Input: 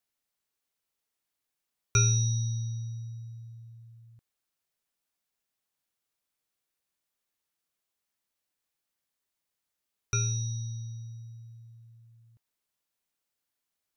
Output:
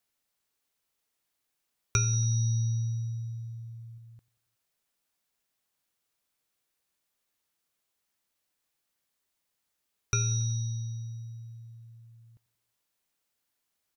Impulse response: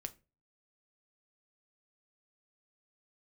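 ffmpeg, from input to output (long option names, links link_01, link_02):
-filter_complex "[0:a]asettb=1/sr,asplit=3[link_01][link_02][link_03];[link_01]atrim=end=1.964[link_04];[link_02]atrim=start=1.96:end=3.98,asetpts=PTS-STARTPTS,afade=type=in:duration=0.004:curve=qsin,afade=type=out:start_time=2.016:duration=0.004:curve=qsin,aecho=1:1:0.9:0.38,atrim=end_sample=89082[link_05];[link_03]atrim=start=3.976[link_06];[link_04][link_05]acrossfade=duration=0.004:curve1=hsin:curve2=qsin[link_07];[link_07][link_06]acrossfade=duration=0.004:curve1=qsin:curve2=hsin,acompressor=threshold=-27dB:ratio=10,aecho=1:1:92|184|276|368:0.0794|0.0445|0.0249|0.0139,volume=4dB"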